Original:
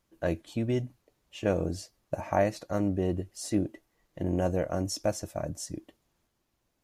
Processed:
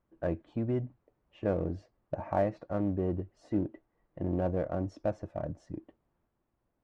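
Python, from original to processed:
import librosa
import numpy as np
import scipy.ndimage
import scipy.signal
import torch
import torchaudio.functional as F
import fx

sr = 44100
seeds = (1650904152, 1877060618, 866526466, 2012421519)

p1 = scipy.signal.sosfilt(scipy.signal.butter(2, 1400.0, 'lowpass', fs=sr, output='sos'), x)
p2 = np.clip(10.0 ** (32.5 / 20.0) * p1, -1.0, 1.0) / 10.0 ** (32.5 / 20.0)
p3 = p1 + (p2 * 10.0 ** (-11.0 / 20.0))
y = p3 * 10.0 ** (-3.5 / 20.0)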